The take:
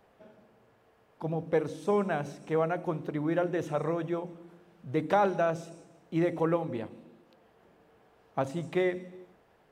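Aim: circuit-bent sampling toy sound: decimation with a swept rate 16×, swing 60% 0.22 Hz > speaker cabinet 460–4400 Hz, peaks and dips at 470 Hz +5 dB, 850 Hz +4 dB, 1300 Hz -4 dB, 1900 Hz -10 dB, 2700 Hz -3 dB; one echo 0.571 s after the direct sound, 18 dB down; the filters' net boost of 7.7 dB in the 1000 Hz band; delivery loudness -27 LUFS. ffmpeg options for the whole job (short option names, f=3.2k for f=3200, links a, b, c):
-af "equalizer=f=1k:t=o:g=8,aecho=1:1:571:0.126,acrusher=samples=16:mix=1:aa=0.000001:lfo=1:lforange=9.6:lforate=0.22,highpass=460,equalizer=f=470:t=q:w=4:g=5,equalizer=f=850:t=q:w=4:g=4,equalizer=f=1.3k:t=q:w=4:g=-4,equalizer=f=1.9k:t=q:w=4:g=-10,equalizer=f=2.7k:t=q:w=4:g=-3,lowpass=f=4.4k:w=0.5412,lowpass=f=4.4k:w=1.3066,volume=2dB"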